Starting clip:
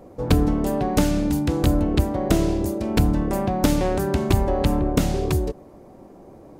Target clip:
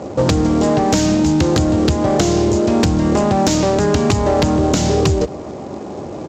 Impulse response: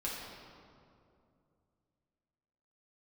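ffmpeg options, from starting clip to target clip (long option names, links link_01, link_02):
-filter_complex "[0:a]highpass=frequency=65:width=0.5412,highpass=frequency=65:width=1.3066,acrossover=split=4500[link_01][link_02];[link_01]acompressor=threshold=-26dB:ratio=12[link_03];[link_03][link_02]amix=inputs=2:normalize=0,asetrate=46305,aresample=44100,apsyclip=21dB,aresample=16000,acrusher=bits=5:mode=log:mix=0:aa=0.000001,aresample=44100,asoftclip=type=tanh:threshold=-2.5dB,asplit=2[link_04][link_05];[link_05]adelay=221.6,volume=-28dB,highshelf=frequency=4000:gain=-4.99[link_06];[link_04][link_06]amix=inputs=2:normalize=0,volume=-4dB"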